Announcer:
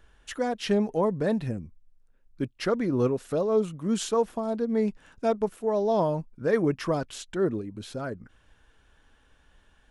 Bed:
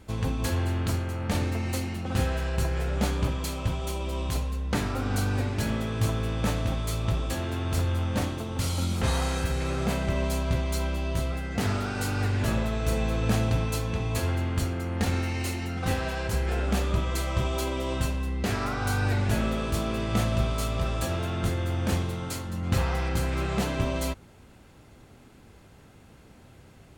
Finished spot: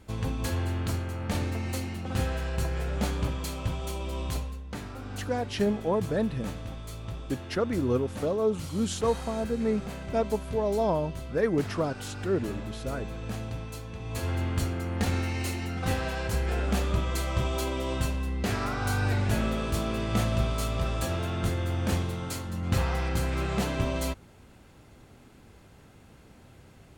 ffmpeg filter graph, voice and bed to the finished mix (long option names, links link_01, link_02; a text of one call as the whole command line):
ffmpeg -i stem1.wav -i stem2.wav -filter_complex "[0:a]adelay=4900,volume=-2dB[link_01];[1:a]volume=7dB,afade=type=out:start_time=4.33:duration=0.31:silence=0.398107,afade=type=in:start_time=13.98:duration=0.44:silence=0.334965[link_02];[link_01][link_02]amix=inputs=2:normalize=0" out.wav